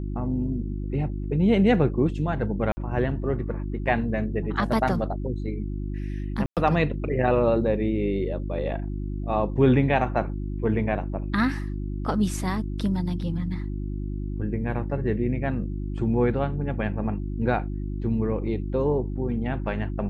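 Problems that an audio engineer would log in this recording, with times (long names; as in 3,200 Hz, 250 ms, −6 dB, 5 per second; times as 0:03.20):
mains hum 50 Hz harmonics 7 −30 dBFS
0:02.72–0:02.77: drop-out 50 ms
0:06.46–0:06.57: drop-out 107 ms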